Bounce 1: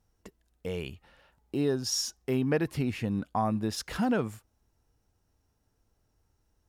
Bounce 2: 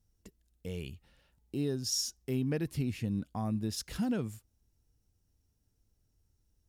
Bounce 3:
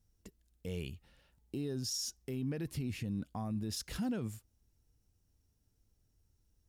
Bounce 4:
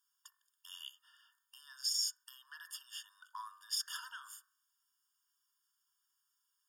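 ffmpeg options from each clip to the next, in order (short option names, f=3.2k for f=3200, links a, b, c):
-af "equalizer=f=1k:w=0.43:g=-13"
-af "alimiter=level_in=5.5dB:limit=-24dB:level=0:latency=1:release=28,volume=-5.5dB"
-af "bandreject=f=46.04:t=h:w=4,bandreject=f=92.08:t=h:w=4,bandreject=f=138.12:t=h:w=4,bandreject=f=184.16:t=h:w=4,bandreject=f=230.2:t=h:w=4,bandreject=f=276.24:t=h:w=4,bandreject=f=322.28:t=h:w=4,bandreject=f=368.32:t=h:w=4,bandreject=f=414.36:t=h:w=4,bandreject=f=460.4:t=h:w=4,bandreject=f=506.44:t=h:w=4,bandreject=f=552.48:t=h:w=4,bandreject=f=598.52:t=h:w=4,bandreject=f=644.56:t=h:w=4,bandreject=f=690.6:t=h:w=4,bandreject=f=736.64:t=h:w=4,bandreject=f=782.68:t=h:w=4,bandreject=f=828.72:t=h:w=4,bandreject=f=874.76:t=h:w=4,bandreject=f=920.8:t=h:w=4,bandreject=f=966.84:t=h:w=4,bandreject=f=1.01288k:t=h:w=4,bandreject=f=1.05892k:t=h:w=4,bandreject=f=1.10496k:t=h:w=4,bandreject=f=1.151k:t=h:w=4,bandreject=f=1.19704k:t=h:w=4,bandreject=f=1.24308k:t=h:w=4,bandreject=f=1.28912k:t=h:w=4,bandreject=f=1.33516k:t=h:w=4,bandreject=f=1.3812k:t=h:w=4,bandreject=f=1.42724k:t=h:w=4,bandreject=f=1.47328k:t=h:w=4,bandreject=f=1.51932k:t=h:w=4,bandreject=f=1.56536k:t=h:w=4,bandreject=f=1.6114k:t=h:w=4,bandreject=f=1.65744k:t=h:w=4,bandreject=f=1.70348k:t=h:w=4,bandreject=f=1.74952k:t=h:w=4,bandreject=f=1.79556k:t=h:w=4,afftfilt=real='re*eq(mod(floor(b*sr/1024/920),2),1)':imag='im*eq(mod(floor(b*sr/1024/920),2),1)':win_size=1024:overlap=0.75,volume=6.5dB"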